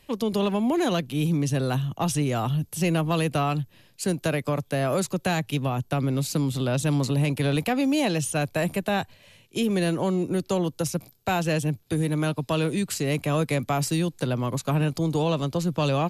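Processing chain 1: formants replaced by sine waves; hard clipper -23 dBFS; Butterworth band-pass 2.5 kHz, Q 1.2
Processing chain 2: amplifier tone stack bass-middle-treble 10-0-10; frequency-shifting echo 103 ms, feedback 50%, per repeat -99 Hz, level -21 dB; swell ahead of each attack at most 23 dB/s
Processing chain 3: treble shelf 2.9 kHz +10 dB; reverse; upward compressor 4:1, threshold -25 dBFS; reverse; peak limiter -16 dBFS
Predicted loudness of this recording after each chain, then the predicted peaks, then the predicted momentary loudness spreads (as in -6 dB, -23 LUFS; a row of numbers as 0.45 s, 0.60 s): -39.0 LUFS, -34.0 LUFS, -25.5 LUFS; -24.5 dBFS, -15.5 dBFS, -16.0 dBFS; 10 LU, 6 LU, 4 LU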